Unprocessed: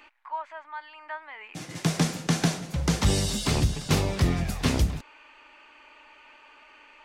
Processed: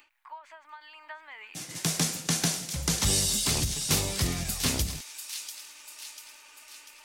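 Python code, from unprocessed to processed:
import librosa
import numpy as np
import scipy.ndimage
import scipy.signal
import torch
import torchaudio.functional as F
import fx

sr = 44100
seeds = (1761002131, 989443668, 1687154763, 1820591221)

y = librosa.effects.preemphasis(x, coef=0.8, zi=[0.0])
y = fx.echo_wet_highpass(y, sr, ms=693, feedback_pct=51, hz=2600.0, wet_db=-8.5)
y = fx.end_taper(y, sr, db_per_s=150.0)
y = y * 10.0 ** (7.5 / 20.0)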